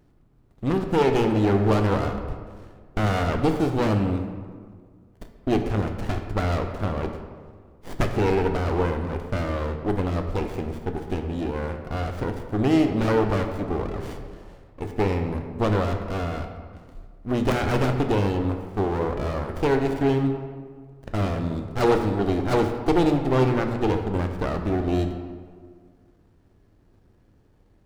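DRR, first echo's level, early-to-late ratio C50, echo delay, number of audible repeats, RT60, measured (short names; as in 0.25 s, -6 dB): 5.0 dB, none, 7.0 dB, none, none, 1.7 s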